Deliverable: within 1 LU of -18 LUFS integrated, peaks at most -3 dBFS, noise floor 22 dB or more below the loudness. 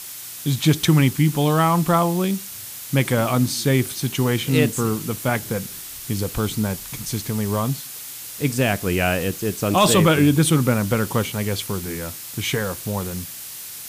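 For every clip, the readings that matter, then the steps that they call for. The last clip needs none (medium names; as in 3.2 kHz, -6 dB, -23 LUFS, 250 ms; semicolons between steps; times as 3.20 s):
noise floor -35 dBFS; noise floor target -43 dBFS; loudness -21.0 LUFS; peak level -4.5 dBFS; loudness target -18.0 LUFS
-> noise reduction 8 dB, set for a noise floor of -35 dBFS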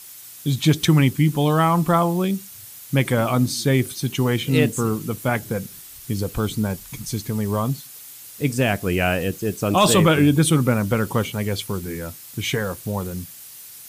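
noise floor -41 dBFS; noise floor target -43 dBFS
-> noise reduction 6 dB, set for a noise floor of -41 dBFS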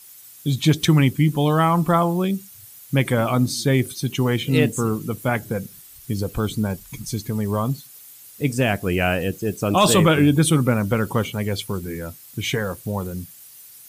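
noise floor -45 dBFS; loudness -21.0 LUFS; peak level -5.0 dBFS; loudness target -18.0 LUFS
-> trim +3 dB; peak limiter -3 dBFS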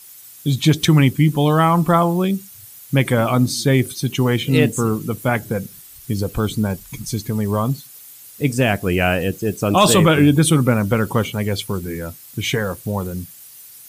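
loudness -18.5 LUFS; peak level -3.0 dBFS; noise floor -42 dBFS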